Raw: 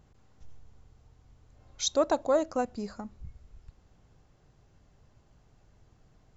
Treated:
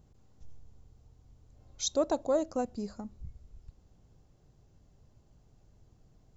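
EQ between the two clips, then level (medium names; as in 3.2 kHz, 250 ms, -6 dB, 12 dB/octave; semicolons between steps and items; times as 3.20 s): peaking EQ 1.7 kHz -9 dB 2.3 oct; 0.0 dB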